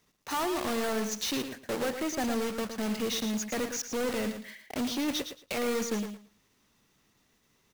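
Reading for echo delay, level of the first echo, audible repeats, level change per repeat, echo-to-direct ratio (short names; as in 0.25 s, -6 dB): 0.112 s, -8.5 dB, 2, -15.0 dB, -8.5 dB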